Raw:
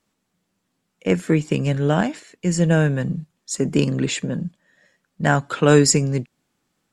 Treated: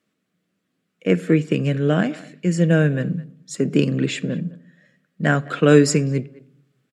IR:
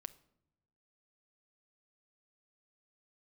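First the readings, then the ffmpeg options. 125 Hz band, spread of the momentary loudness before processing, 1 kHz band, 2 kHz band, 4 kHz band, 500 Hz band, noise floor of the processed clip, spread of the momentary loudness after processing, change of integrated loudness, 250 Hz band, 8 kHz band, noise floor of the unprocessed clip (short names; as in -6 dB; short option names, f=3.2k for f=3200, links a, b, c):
0.0 dB, 14 LU, -4.0 dB, +0.5 dB, -3.0 dB, +1.0 dB, -75 dBFS, 13 LU, +0.5 dB, +1.5 dB, -7.0 dB, -75 dBFS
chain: -filter_complex "[0:a]highpass=140,equalizer=f=890:t=o:w=0.45:g=-14.5,asplit=2[a][b];[b]adelay=210,highpass=300,lowpass=3.4k,asoftclip=type=hard:threshold=-11.5dB,volume=-20dB[c];[a][c]amix=inputs=2:normalize=0,asplit=2[d][e];[1:a]atrim=start_sample=2205,lowpass=3.9k[f];[e][f]afir=irnorm=-1:irlink=0,volume=6.5dB[g];[d][g]amix=inputs=2:normalize=0,volume=-5dB"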